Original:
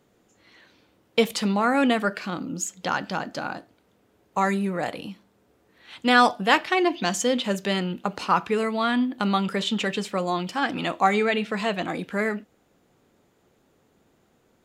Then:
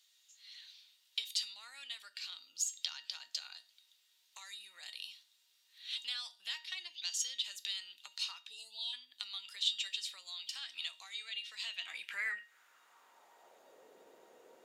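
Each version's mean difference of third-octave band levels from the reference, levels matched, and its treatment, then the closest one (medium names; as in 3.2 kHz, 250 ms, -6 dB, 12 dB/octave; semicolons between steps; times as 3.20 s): 16.0 dB: time-frequency box 8.49–8.93 s, 1–2.6 kHz -29 dB; compression 5:1, threshold -35 dBFS, peak gain reduction 20 dB; high-pass sweep 3.8 kHz -> 480 Hz, 11.57–13.88 s; feedback comb 930 Hz, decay 0.3 s, mix 80%; trim +14 dB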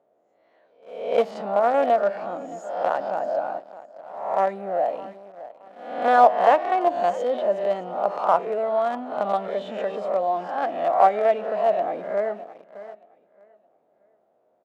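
10.0 dB: reverse spectral sustain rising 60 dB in 0.67 s; feedback delay 617 ms, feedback 32%, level -18 dB; in parallel at -8 dB: companded quantiser 2-bit; on the sum: band-pass filter 640 Hz, Q 5.7; trim +7 dB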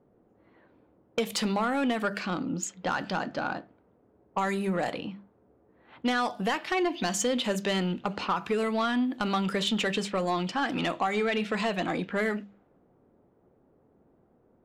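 3.5 dB: level-controlled noise filter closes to 820 Hz, open at -22 dBFS; hum notches 50/100/150/200 Hz; compression 12:1, threshold -22 dBFS, peak gain reduction 11 dB; saturation -19.5 dBFS, distortion -16 dB; trim +1 dB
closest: third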